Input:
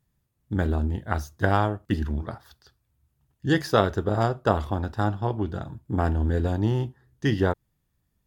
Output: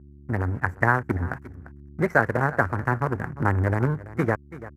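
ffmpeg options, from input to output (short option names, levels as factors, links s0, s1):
-filter_complex "[0:a]adynamicequalizer=threshold=0.0126:dfrequency=640:dqfactor=3.6:tfrequency=640:tqfactor=3.6:attack=5:release=100:ratio=0.375:range=2:mode=cutabove:tftype=bell,acrossover=split=250[s0][s1];[s1]acrusher=bits=5:dc=4:mix=0:aa=0.000001[s2];[s0][s2]amix=inputs=2:normalize=0,aeval=exprs='val(0)+0.00398*(sin(2*PI*60*n/s)+sin(2*PI*2*60*n/s)/2+sin(2*PI*3*60*n/s)/3+sin(2*PI*4*60*n/s)/4+sin(2*PI*5*60*n/s)/5)':c=same,dynaudnorm=f=230:g=9:m=1.5,aecho=1:1:600:0.1,asetrate=76440,aresample=44100,highpass=63,highshelf=f=3500:t=q:w=3:g=-14,asplit=2[s3][s4];[s4]acompressor=threshold=0.0282:ratio=6,volume=1.06[s5];[s3][s5]amix=inputs=2:normalize=0,asetrate=30296,aresample=44100,atempo=1.45565,volume=0.631"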